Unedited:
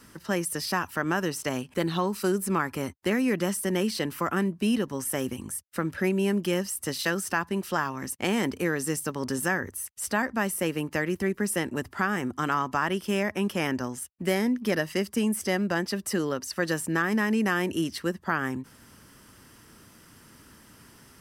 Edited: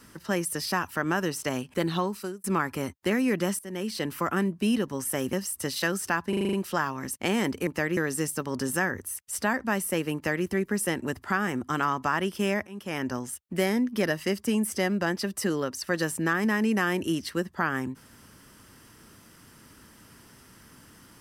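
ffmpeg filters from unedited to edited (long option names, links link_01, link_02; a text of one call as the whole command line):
ffmpeg -i in.wav -filter_complex "[0:a]asplit=13[link_01][link_02][link_03][link_04][link_05][link_06][link_07][link_08][link_09][link_10][link_11][link_12][link_13];[link_01]atrim=end=2.44,asetpts=PTS-STARTPTS,afade=type=out:start_time=1.98:duration=0.46[link_14];[link_02]atrim=start=2.44:end=3.59,asetpts=PTS-STARTPTS,afade=type=in:duration=0.004:curve=hsin,afade=type=out:start_time=1.146:duration=0.004:curve=hsin:silence=0.133352[link_15];[link_03]atrim=start=3.59:end=5.332,asetpts=PTS-STARTPTS,afade=type=in:duration=0.52:silence=0.133352[link_16];[link_04]atrim=start=6.558:end=7.562[link_17];[link_05]atrim=start=7.518:end=7.562[link_18];[link_06]atrim=start=7.518:end=7.562[link_19];[link_07]atrim=start=7.518:end=7.562[link_20];[link_08]atrim=start=7.518:end=7.562[link_21];[link_09]atrim=start=7.518:end=7.562[link_22];[link_10]atrim=start=7.518:end=8.662[link_23];[link_11]atrim=start=10.838:end=11.142[link_24];[link_12]atrim=start=8.658:end=13.36,asetpts=PTS-STARTPTS,afade=type=out:start_time=4.698:duration=0.004:curve=hsin:silence=0.0794328[link_25];[link_13]atrim=start=13.36,asetpts=PTS-STARTPTS,afade=type=in:duration=0.47:silence=0.0794328[link_26];[link_14][link_15][link_16]concat=n=3:v=0:a=1[link_27];[link_27][link_17]acrossfade=duration=0.004:curve1=hsin:curve2=hsin[link_28];[link_28][link_18]acrossfade=duration=0.004:curve1=hsin:curve2=hsin[link_29];[link_29][link_19]acrossfade=duration=0.004:curve1=hsin:curve2=hsin[link_30];[link_30][link_20]acrossfade=duration=0.004:curve1=hsin:curve2=hsin[link_31];[link_31][link_21]acrossfade=duration=0.004:curve1=hsin:curve2=hsin[link_32];[link_32][link_22]acrossfade=duration=0.004:curve1=hsin:curve2=hsin[link_33];[link_33][link_23]acrossfade=duration=0.004:curve1=hsin:curve2=hsin[link_34];[link_34][link_24]acrossfade=duration=0.004:curve1=hsin:curve2=hsin[link_35];[link_25][link_26]concat=n=2:v=0:a=1[link_36];[link_35][link_36]acrossfade=duration=0.004:curve1=hsin:curve2=hsin" out.wav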